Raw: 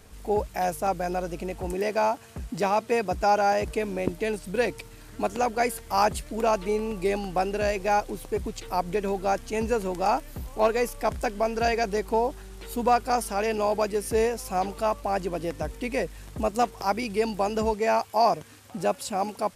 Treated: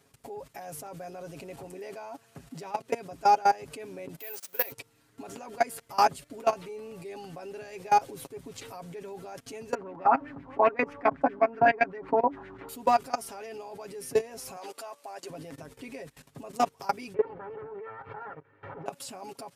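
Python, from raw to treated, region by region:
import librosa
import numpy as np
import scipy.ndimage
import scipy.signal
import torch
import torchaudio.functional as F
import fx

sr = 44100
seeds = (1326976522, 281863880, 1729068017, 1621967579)

y = fx.chain(x, sr, fx.highpass(hz=650.0, slope=12),
    fx.resample_bad(factor=3, down='none', up='zero_stuff'), at=(4.19, 4.72))
y = fx.chain(y, sr, fx.peak_eq(hz=280.0, db=13.0, octaves=0.24),
    fx.filter_lfo_lowpass(shape='sine', hz=7.8, low_hz=910.0, high_hz=2200.0, q=3.1), at=(9.74, 12.69))
y = fx.chain(y, sr, fx.highpass(hz=470.0, slope=12),
    fx.peak_eq(hz=8000.0, db=4.0, octaves=1.7), at=(14.56, 15.3))
y = fx.chain(y, sr, fx.lower_of_two(delay_ms=2.2),
    fx.lowpass(hz=1800.0, slope=24),
    fx.pre_swell(db_per_s=59.0), at=(17.14, 18.86))
y = fx.level_steps(y, sr, step_db=21)
y = scipy.signal.sosfilt(scipy.signal.butter(2, 120.0, 'highpass', fs=sr, output='sos'), y)
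y = y + 0.62 * np.pad(y, (int(7.3 * sr / 1000.0), 0))[:len(y)]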